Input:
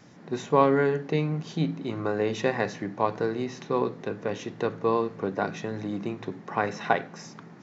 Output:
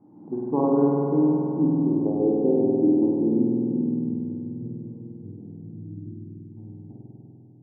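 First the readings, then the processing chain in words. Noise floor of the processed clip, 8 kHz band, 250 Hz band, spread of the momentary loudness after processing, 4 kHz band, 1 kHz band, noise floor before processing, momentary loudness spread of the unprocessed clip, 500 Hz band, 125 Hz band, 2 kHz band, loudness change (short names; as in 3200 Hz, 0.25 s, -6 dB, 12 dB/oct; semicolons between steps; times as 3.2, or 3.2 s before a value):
-50 dBFS, n/a, +9.0 dB, 20 LU, under -40 dB, -8.0 dB, -48 dBFS, 10 LU, +0.5 dB, +1.5 dB, under -30 dB, +5.0 dB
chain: vocal tract filter u; low-pass sweep 1300 Hz -> 100 Hz, 0.88–4.87; spring tank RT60 3.3 s, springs 49 ms, chirp 35 ms, DRR -4.5 dB; gain +6.5 dB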